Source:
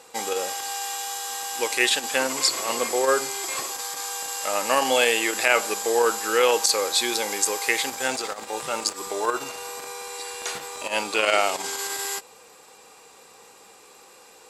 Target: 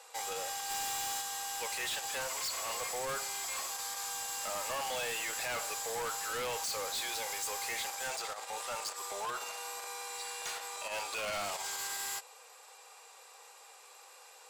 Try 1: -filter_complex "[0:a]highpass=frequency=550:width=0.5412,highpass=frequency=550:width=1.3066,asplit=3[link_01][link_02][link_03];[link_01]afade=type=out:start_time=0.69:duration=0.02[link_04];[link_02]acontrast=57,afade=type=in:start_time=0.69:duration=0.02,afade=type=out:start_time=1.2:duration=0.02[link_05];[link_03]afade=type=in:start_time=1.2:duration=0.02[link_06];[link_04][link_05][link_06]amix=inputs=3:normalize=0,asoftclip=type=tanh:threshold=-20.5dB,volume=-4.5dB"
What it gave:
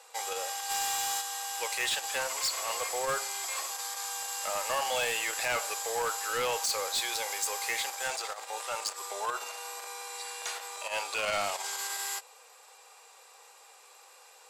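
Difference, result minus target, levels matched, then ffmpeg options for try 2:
soft clipping: distortion −5 dB
-filter_complex "[0:a]highpass=frequency=550:width=0.5412,highpass=frequency=550:width=1.3066,asplit=3[link_01][link_02][link_03];[link_01]afade=type=out:start_time=0.69:duration=0.02[link_04];[link_02]acontrast=57,afade=type=in:start_time=0.69:duration=0.02,afade=type=out:start_time=1.2:duration=0.02[link_05];[link_03]afade=type=in:start_time=1.2:duration=0.02[link_06];[link_04][link_05][link_06]amix=inputs=3:normalize=0,asoftclip=type=tanh:threshold=-29.5dB,volume=-4.5dB"

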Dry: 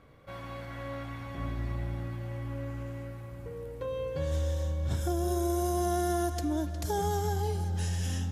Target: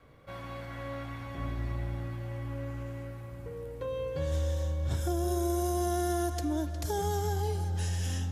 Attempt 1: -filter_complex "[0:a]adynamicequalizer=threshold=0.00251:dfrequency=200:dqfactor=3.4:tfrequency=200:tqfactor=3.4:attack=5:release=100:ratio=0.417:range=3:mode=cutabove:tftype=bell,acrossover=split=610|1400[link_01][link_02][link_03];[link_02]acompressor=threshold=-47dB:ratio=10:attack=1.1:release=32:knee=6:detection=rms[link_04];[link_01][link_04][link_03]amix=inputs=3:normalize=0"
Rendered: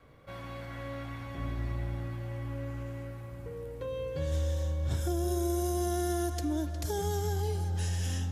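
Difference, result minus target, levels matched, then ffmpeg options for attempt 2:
downward compressor: peak gain reduction +9 dB
-filter_complex "[0:a]adynamicequalizer=threshold=0.00251:dfrequency=200:dqfactor=3.4:tfrequency=200:tqfactor=3.4:attack=5:release=100:ratio=0.417:range=3:mode=cutabove:tftype=bell,acrossover=split=610|1400[link_01][link_02][link_03];[link_02]acompressor=threshold=-36.5dB:ratio=10:attack=1.1:release=32:knee=6:detection=rms[link_04];[link_01][link_04][link_03]amix=inputs=3:normalize=0"

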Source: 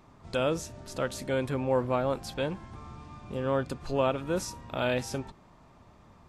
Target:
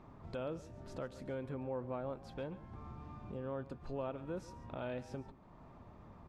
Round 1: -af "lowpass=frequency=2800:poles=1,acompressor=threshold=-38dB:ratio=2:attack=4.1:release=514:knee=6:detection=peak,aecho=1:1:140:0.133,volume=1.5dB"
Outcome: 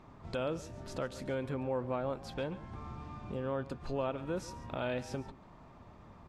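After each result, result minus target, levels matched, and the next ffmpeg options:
downward compressor: peak gain reduction −5 dB; 2,000 Hz band +3.0 dB
-af "lowpass=frequency=2800:poles=1,acompressor=threshold=-48.5dB:ratio=2:attack=4.1:release=514:knee=6:detection=peak,aecho=1:1:140:0.133,volume=1.5dB"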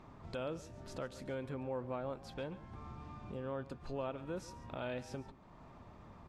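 2,000 Hz band +3.0 dB
-af "lowpass=frequency=1200:poles=1,acompressor=threshold=-48.5dB:ratio=2:attack=4.1:release=514:knee=6:detection=peak,aecho=1:1:140:0.133,volume=1.5dB"

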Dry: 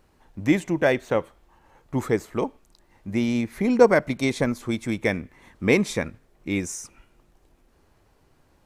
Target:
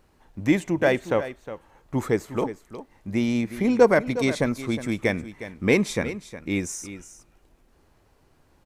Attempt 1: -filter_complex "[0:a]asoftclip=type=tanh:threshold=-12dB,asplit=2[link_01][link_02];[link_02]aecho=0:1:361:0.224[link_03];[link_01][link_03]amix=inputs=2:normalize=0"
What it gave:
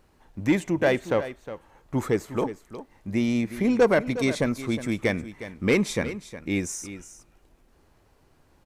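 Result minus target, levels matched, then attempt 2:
soft clipping: distortion +12 dB
-filter_complex "[0:a]asoftclip=type=tanh:threshold=-3.5dB,asplit=2[link_01][link_02];[link_02]aecho=0:1:361:0.224[link_03];[link_01][link_03]amix=inputs=2:normalize=0"

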